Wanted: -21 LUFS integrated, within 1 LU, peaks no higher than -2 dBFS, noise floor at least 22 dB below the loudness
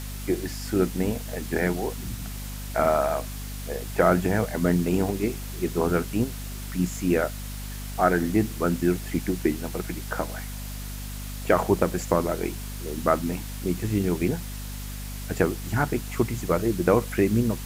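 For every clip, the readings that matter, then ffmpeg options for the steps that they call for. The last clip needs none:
hum 50 Hz; harmonics up to 250 Hz; hum level -33 dBFS; noise floor -35 dBFS; noise floor target -49 dBFS; loudness -26.5 LUFS; peak -5.5 dBFS; loudness target -21.0 LUFS
-> -af "bandreject=f=50:t=h:w=4,bandreject=f=100:t=h:w=4,bandreject=f=150:t=h:w=4,bandreject=f=200:t=h:w=4,bandreject=f=250:t=h:w=4"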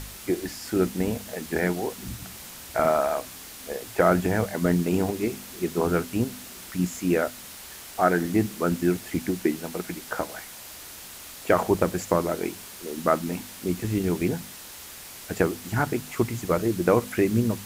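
hum none; noise floor -42 dBFS; noise floor target -49 dBFS
-> -af "afftdn=nr=7:nf=-42"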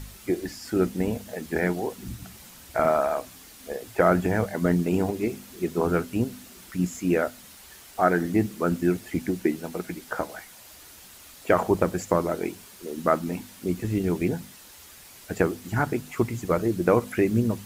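noise floor -48 dBFS; noise floor target -49 dBFS
-> -af "afftdn=nr=6:nf=-48"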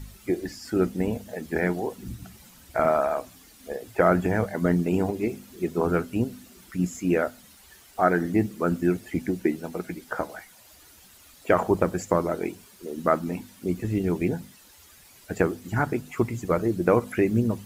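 noise floor -53 dBFS; loudness -26.5 LUFS; peak -5.5 dBFS; loudness target -21.0 LUFS
-> -af "volume=5.5dB,alimiter=limit=-2dB:level=0:latency=1"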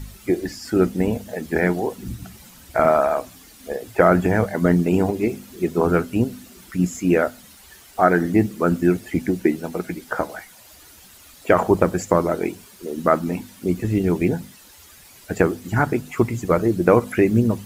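loudness -21.0 LUFS; peak -2.0 dBFS; noise floor -47 dBFS

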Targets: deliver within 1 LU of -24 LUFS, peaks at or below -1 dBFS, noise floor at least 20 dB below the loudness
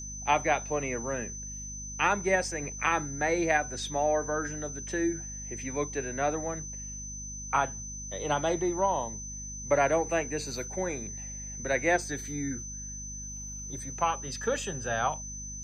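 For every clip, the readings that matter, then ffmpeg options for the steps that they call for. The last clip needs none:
hum 50 Hz; harmonics up to 250 Hz; hum level -41 dBFS; steady tone 6100 Hz; tone level -39 dBFS; loudness -31.0 LUFS; peak -11.5 dBFS; loudness target -24.0 LUFS
-> -af "bandreject=f=50:t=h:w=4,bandreject=f=100:t=h:w=4,bandreject=f=150:t=h:w=4,bandreject=f=200:t=h:w=4,bandreject=f=250:t=h:w=4"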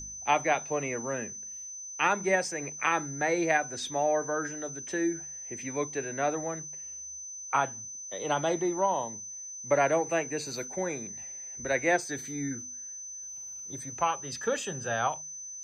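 hum none; steady tone 6100 Hz; tone level -39 dBFS
-> -af "bandreject=f=6.1k:w=30"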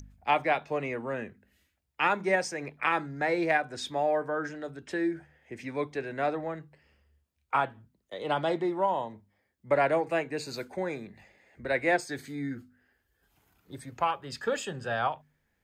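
steady tone none; loudness -30.5 LUFS; peak -12.0 dBFS; loudness target -24.0 LUFS
-> -af "volume=6.5dB"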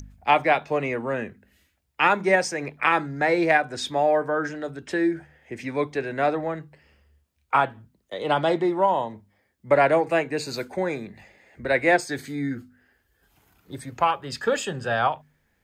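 loudness -24.0 LUFS; peak -5.5 dBFS; noise floor -70 dBFS

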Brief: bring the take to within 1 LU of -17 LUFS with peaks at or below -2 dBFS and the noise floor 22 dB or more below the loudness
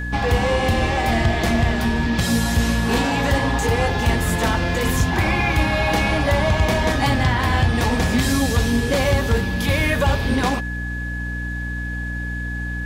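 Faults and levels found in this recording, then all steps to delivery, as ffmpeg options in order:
hum 60 Hz; harmonics up to 300 Hz; hum level -25 dBFS; steady tone 1700 Hz; tone level -29 dBFS; loudness -20.0 LUFS; peak -7.0 dBFS; loudness target -17.0 LUFS
-> -af "bandreject=f=60:t=h:w=6,bandreject=f=120:t=h:w=6,bandreject=f=180:t=h:w=6,bandreject=f=240:t=h:w=6,bandreject=f=300:t=h:w=6"
-af "bandreject=f=1.7k:w=30"
-af "volume=3dB"

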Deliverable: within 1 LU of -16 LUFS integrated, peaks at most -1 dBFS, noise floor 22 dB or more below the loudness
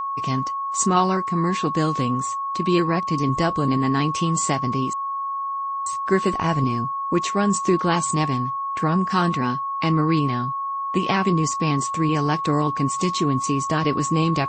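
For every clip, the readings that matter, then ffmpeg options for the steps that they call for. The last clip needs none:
steady tone 1100 Hz; tone level -24 dBFS; loudness -22.0 LUFS; peak -6.5 dBFS; loudness target -16.0 LUFS
-> -af "bandreject=f=1.1k:w=30"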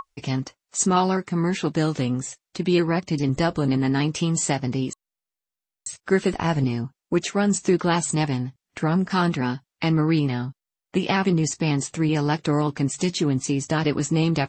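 steady tone none; loudness -23.5 LUFS; peak -7.5 dBFS; loudness target -16.0 LUFS
-> -af "volume=7.5dB,alimiter=limit=-1dB:level=0:latency=1"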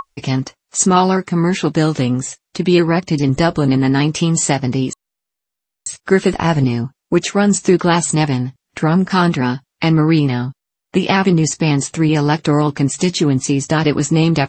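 loudness -16.0 LUFS; peak -1.0 dBFS; noise floor -81 dBFS

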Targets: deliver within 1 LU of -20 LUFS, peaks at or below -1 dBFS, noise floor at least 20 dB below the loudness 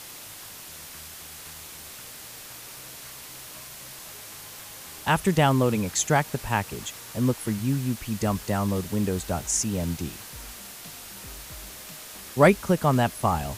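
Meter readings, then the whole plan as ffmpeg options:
noise floor -42 dBFS; noise floor target -45 dBFS; loudness -25.0 LUFS; peak -5.0 dBFS; loudness target -20.0 LUFS
-> -af "afftdn=nr=6:nf=-42"
-af "volume=5dB,alimiter=limit=-1dB:level=0:latency=1"

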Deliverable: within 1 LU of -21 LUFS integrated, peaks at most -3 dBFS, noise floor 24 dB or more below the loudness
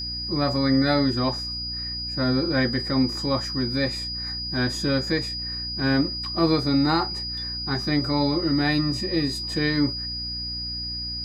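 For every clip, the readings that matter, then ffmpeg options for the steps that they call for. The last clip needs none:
hum 60 Hz; harmonics up to 300 Hz; hum level -35 dBFS; steady tone 4900 Hz; tone level -29 dBFS; loudness -24.0 LUFS; peak -8.5 dBFS; loudness target -21.0 LUFS
-> -af "bandreject=f=60:t=h:w=6,bandreject=f=120:t=h:w=6,bandreject=f=180:t=h:w=6,bandreject=f=240:t=h:w=6,bandreject=f=300:t=h:w=6"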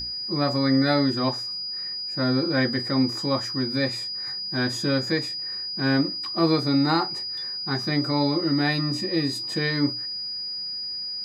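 hum none; steady tone 4900 Hz; tone level -29 dBFS
-> -af "bandreject=f=4.9k:w=30"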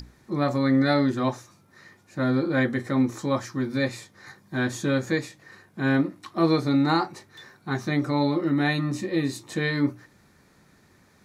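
steady tone none; loudness -25.0 LUFS; peak -9.0 dBFS; loudness target -21.0 LUFS
-> -af "volume=4dB"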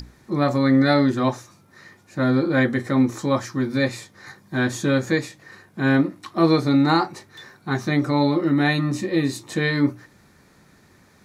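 loudness -21.0 LUFS; peak -5.0 dBFS; noise floor -55 dBFS

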